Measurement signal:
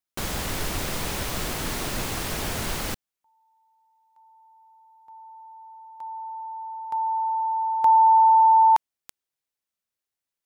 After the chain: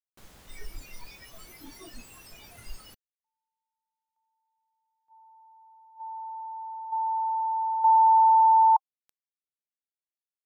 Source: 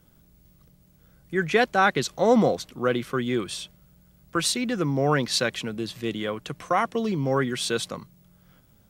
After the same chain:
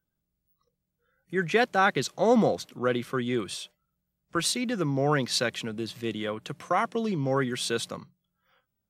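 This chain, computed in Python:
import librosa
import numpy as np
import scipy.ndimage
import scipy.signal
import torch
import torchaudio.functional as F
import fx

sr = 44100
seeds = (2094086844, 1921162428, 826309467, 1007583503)

y = fx.noise_reduce_blind(x, sr, reduce_db=22)
y = y * 10.0 ** (-2.5 / 20.0)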